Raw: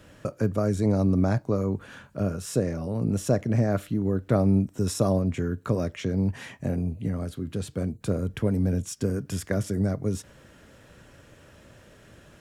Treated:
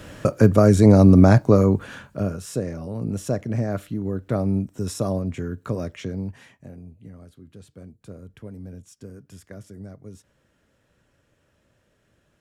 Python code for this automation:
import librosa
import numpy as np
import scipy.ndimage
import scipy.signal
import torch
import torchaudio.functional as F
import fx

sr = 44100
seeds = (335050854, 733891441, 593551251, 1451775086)

y = fx.gain(x, sr, db=fx.line((1.59, 10.5), (2.51, -1.5), (6.03, -1.5), (6.71, -14.0)))